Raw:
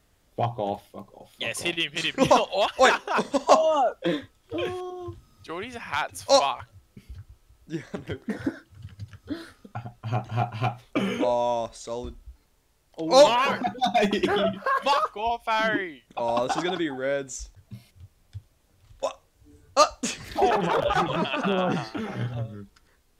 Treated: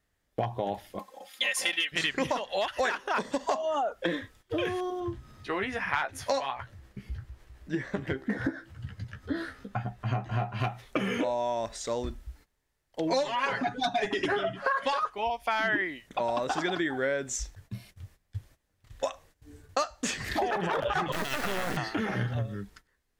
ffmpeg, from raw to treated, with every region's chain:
-filter_complex "[0:a]asettb=1/sr,asplit=3[s0][s1][s2];[s0]atrim=end=0.994[s3];[s1]atrim=start=0.99:end=1.92,asetpts=PTS-STARTPTS,afade=t=in:d=0.004:c=qsin,afade=t=out:st=0.926:d=0.004:c=qsin,highpass=f=1100:p=1,aecho=1:1:3.8:0.97,atrim=end_sample=41013[s4];[s2]atrim=start=1.916[s5];[s3][s4]acrossfade=d=0.004:c1=hsin:c2=qsin[s6];[s6][s5]acrossfade=d=0.004:c1=qsin:c2=hsin,asettb=1/sr,asplit=3[s7][s8][s9];[s7]atrim=end=5.004[s10];[s8]atrim=start=5:end=10.6,asetpts=PTS-STARTPTS,afade=t=in:d=0.004:c=qsin,afade=t=out:st=5.596:d=0.004:c=qsin,highshelf=f=4600:g=-10,asplit=2[s11][s12];[s12]adelay=15,volume=0.501[s13];[s11][s13]amix=inputs=2:normalize=0,atrim=end_sample=246960,acompressor=mode=upward:threshold=0.00447:ratio=2.5:attack=3.2:release=140:knee=2.83:detection=peak[s14];[s9]atrim=start=10.596[s15];[s10][s14]acrossfade=d=0.004:c1=hsin:c2=qsin[s16];[s16][s15]acrossfade=d=0.004:c1=qsin:c2=hsin,asettb=1/sr,asplit=3[s17][s18][s19];[s17]atrim=end=13.114[s20];[s18]atrim=start=13.11:end=15.1,asetpts=PTS-STARTPTS,afade=t=in:d=0.004:c=qsin,afade=t=out:st=1.986:d=0.004:c=qsin,lowpass=f=10000:w=0.5412,lowpass=f=10000:w=1.3066,aecho=1:1:7.3:0.97,atrim=end_sample=87759[s21];[s19]atrim=start=15.096[s22];[s20][s21]acrossfade=d=0.004:c1=hsin:c2=qsin[s23];[s23][s22]acrossfade=d=0.004:c1=qsin:c2=hsin,asettb=1/sr,asplit=3[s24][s25][s26];[s24]atrim=end=21.124[s27];[s25]atrim=start=21.12:end=21.77,asetpts=PTS-STARTPTS,afade=t=in:d=0.004:c=qsin,afade=t=out:st=0.646:d=0.004:c=qsin,lowshelf=f=180:g=-7,acrusher=bits=3:dc=4:mix=0:aa=0.000001[s28];[s26]atrim=start=21.766[s29];[s27][s28]acrossfade=d=0.004:c1=hsin:c2=qsin[s30];[s30][s29]acrossfade=d=0.004:c1=qsin:c2=hsin,agate=range=0.158:threshold=0.00178:ratio=16:detection=peak,acompressor=threshold=0.0355:ratio=10,equalizer=f=1800:t=o:w=0.42:g=7.5,volume=1.41"

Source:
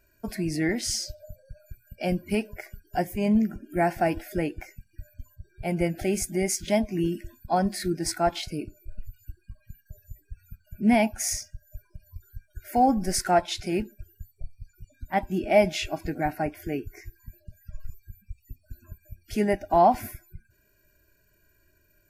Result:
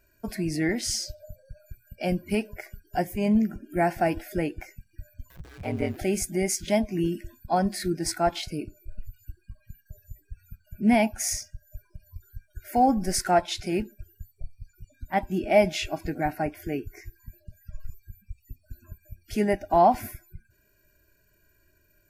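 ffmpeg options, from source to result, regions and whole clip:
-filter_complex "[0:a]asettb=1/sr,asplit=3[s0][s1][s2];[s0]atrim=end=5.304[s3];[s1]atrim=start=5.3:end=5.97,asetpts=PTS-STARTPTS,afade=t=in:d=0.004:c=qsin,afade=t=out:st=0.666:d=0.004:c=qsin,aeval=exprs='val(0)+0.5*0.0106*sgn(val(0))':c=same,acrossover=split=5100[s4][s5];[s5]acompressor=threshold=0.00178:ratio=4:attack=1:release=60[s6];[s4][s6]amix=inputs=2:normalize=0,aeval=exprs='val(0)*sin(2*PI*65*n/s)':c=same[s7];[s2]atrim=start=5.966[s8];[s3][s7]acrossfade=d=0.004:c1=hsin:c2=qsin[s9];[s9][s8]acrossfade=d=0.004:c1=qsin:c2=hsin"

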